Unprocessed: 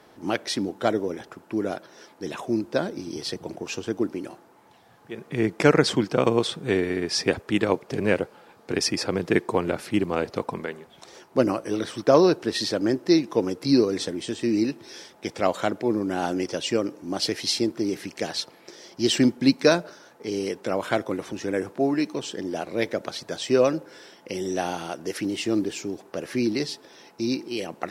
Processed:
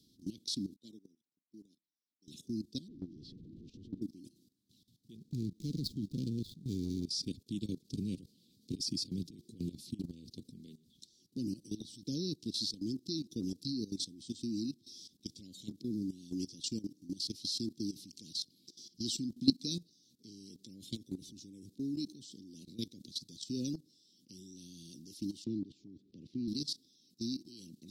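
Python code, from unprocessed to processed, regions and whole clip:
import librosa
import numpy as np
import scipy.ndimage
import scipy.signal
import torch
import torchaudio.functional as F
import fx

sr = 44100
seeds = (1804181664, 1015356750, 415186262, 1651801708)

y = fx.chain(x, sr, fx.highpass(hz=200.0, slope=12),
    fx.upward_expand(threshold_db=-40.0, expansion=2.5), at=(0.76, 2.28))
y = fx.chain(y, sr, fx.zero_step(step_db=-26.5),
    fx.lowpass(hz=1100.0, slope=12),
    fx.transient(attack_db=-10, sustain_db=2), at=(2.88, 4.02))
y = fx.chain(y, sr, fx.median_filter(points=15),
    fx.low_shelf(hz=110.0, db=8.0), at=(5.16, 7.06))
y = fx.chain(y, sr, fx.highpass(hz=50.0, slope=12),
    fx.over_compress(threshold_db=-25.0, ratio=-0.5),
    fx.clip_hard(threshold_db=-13.5), at=(8.17, 10.12))
y = fx.chain(y, sr, fx.lowpass(hz=2300.0, slope=12),
    fx.band_squash(depth_pct=40), at=(25.44, 26.48))
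y = scipy.signal.sosfilt(scipy.signal.ellip(3, 1.0, 60, [260.0, 4500.0], 'bandstop', fs=sr, output='sos'), y)
y = fx.peak_eq(y, sr, hz=3600.0, db=8.5, octaves=0.6)
y = fx.level_steps(y, sr, step_db=16)
y = y * librosa.db_to_amplitude(-4.0)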